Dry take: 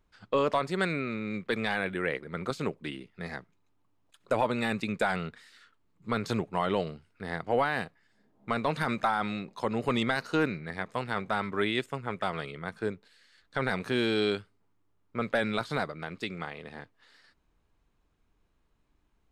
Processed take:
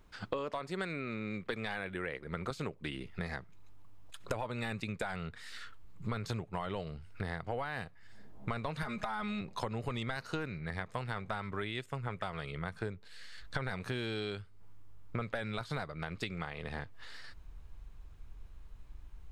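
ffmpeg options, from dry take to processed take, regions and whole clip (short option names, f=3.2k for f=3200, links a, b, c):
-filter_complex "[0:a]asettb=1/sr,asplit=3[a][b][c];[a]atrim=end=8.824[d];[b]atrim=start=8.82:end=9.41,asetpts=PTS-STARTPTS,afade=t=in:d=0.004:c=qsin,afade=t=out:st=0.586:d=0.004:c=qsin,aecho=1:1:4.8:0.86,atrim=end_sample=26019,acompressor=threshold=-27dB:ratio=6:attack=3.2:release=140:knee=1:detection=peak[e];[c]atrim=start=9.406[f];[d][e]acrossfade=d=0.004:c1=hsin:c2=qsin[g];[g][f]acrossfade=d=0.004:c1=qsin:c2=hsin,asubboost=boost=5.5:cutoff=100,acompressor=threshold=-44dB:ratio=10,volume=9.5dB"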